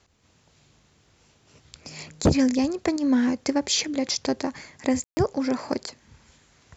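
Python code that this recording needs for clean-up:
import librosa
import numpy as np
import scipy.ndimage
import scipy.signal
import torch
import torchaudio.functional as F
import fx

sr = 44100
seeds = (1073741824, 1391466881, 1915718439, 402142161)

y = fx.fix_declip(x, sr, threshold_db=-11.5)
y = fx.fix_ambience(y, sr, seeds[0], print_start_s=0.0, print_end_s=0.5, start_s=5.04, end_s=5.17)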